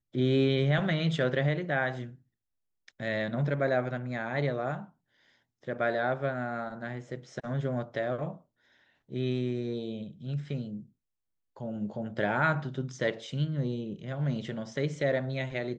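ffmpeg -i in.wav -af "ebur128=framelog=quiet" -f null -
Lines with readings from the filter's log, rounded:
Integrated loudness:
  I:         -31.4 LUFS
  Threshold: -42.0 LUFS
Loudness range:
  LRA:         5.2 LU
  Threshold: -53.0 LUFS
  LRA low:   -35.7 LUFS
  LRA high:  -30.5 LUFS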